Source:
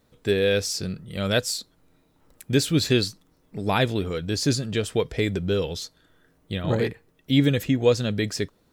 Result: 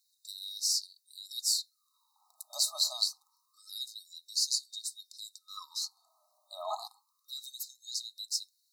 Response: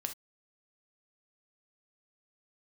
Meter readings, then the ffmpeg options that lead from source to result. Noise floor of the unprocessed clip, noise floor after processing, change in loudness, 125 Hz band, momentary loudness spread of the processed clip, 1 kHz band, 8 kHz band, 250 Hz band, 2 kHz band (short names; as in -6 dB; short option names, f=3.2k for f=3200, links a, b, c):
-64 dBFS, -77 dBFS, -9.0 dB, under -40 dB, 18 LU, -11.5 dB, 0.0 dB, under -40 dB, under -40 dB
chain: -af "afftfilt=real='re*(1-between(b*sr/4096,1300,3700))':imag='im*(1-between(b*sr/4096,1300,3700))':win_size=4096:overlap=0.75,afftfilt=real='re*gte(b*sr/1024,570*pow(2500/570,0.5+0.5*sin(2*PI*0.27*pts/sr)))':imag='im*gte(b*sr/1024,570*pow(2500/570,0.5+0.5*sin(2*PI*0.27*pts/sr)))':win_size=1024:overlap=0.75"